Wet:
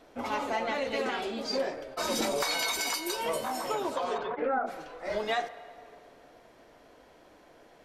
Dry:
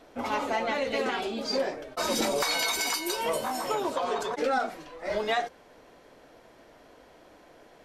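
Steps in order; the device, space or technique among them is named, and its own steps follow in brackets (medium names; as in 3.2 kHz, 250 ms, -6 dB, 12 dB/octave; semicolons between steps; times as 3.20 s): filtered reverb send (on a send: high-pass 410 Hz 24 dB/octave + low-pass 3.4 kHz + reverberation RT60 2.6 s, pre-delay 27 ms, DRR 13.5 dB); 4.17–4.66 s: on the sum: low-pass 3.8 kHz -> 1.4 kHz 24 dB/octave; trim -2.5 dB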